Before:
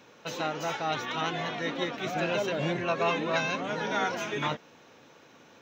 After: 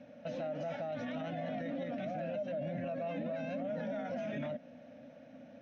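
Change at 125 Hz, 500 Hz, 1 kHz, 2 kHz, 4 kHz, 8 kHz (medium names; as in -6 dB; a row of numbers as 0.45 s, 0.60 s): -6.5 dB, -5.5 dB, -13.5 dB, -16.5 dB, -20.5 dB, under -20 dB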